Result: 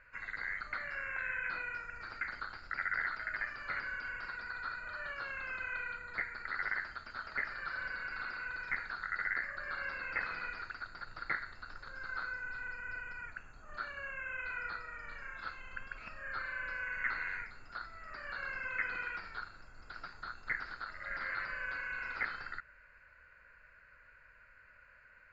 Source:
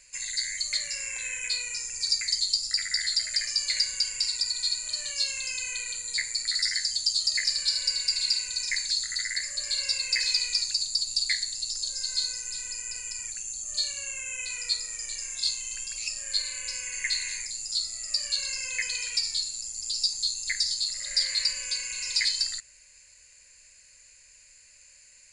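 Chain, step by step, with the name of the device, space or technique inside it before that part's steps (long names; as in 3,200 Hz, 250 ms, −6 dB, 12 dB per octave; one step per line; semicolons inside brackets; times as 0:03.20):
overdriven synthesiser ladder filter (soft clipping −28 dBFS, distortion −8 dB; transistor ladder low-pass 1,500 Hz, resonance 80%)
level +14.5 dB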